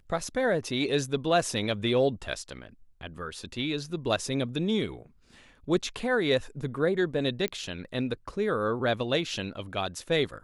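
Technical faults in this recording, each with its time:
7.48 pop -17 dBFS

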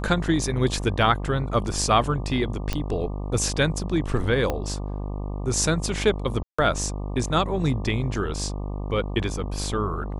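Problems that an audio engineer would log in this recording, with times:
buzz 50 Hz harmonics 24 -30 dBFS
2.73 pop -11 dBFS
4.5 pop -12 dBFS
6.43–6.58 gap 0.155 s

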